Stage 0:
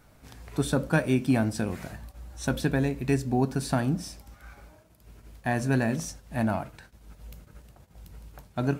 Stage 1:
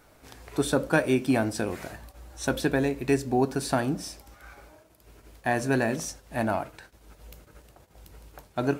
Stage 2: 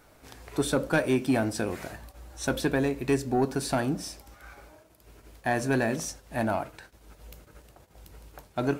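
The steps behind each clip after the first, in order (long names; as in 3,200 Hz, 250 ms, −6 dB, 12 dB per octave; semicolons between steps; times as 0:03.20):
low shelf with overshoot 260 Hz −6 dB, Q 1.5; level +2.5 dB
soft clipping −14.5 dBFS, distortion −19 dB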